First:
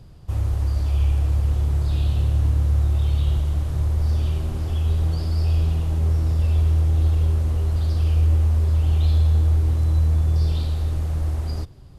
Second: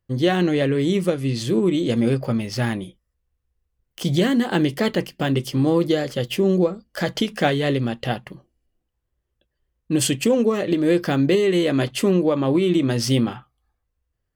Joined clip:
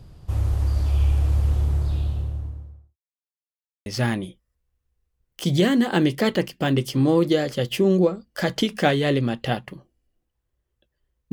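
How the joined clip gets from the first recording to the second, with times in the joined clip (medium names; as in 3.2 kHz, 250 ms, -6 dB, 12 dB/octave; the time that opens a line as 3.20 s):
first
1.41–2.97 s: studio fade out
2.97–3.86 s: mute
3.86 s: go over to second from 2.45 s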